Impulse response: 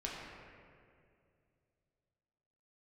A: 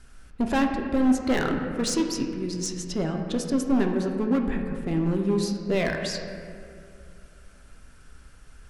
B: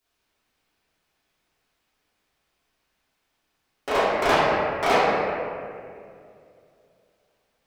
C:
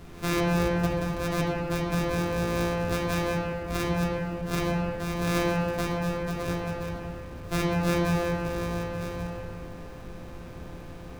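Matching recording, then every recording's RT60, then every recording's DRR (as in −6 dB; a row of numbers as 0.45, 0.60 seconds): C; 2.4, 2.3, 2.3 seconds; 2.5, −14.0, −5.0 decibels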